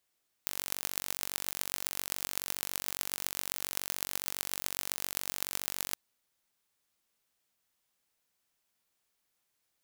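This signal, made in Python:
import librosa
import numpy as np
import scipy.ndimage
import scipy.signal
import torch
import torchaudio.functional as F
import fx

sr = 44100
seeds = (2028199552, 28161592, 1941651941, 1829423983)

y = fx.impulse_train(sr, length_s=5.48, per_s=47.2, accent_every=6, level_db=-3.5)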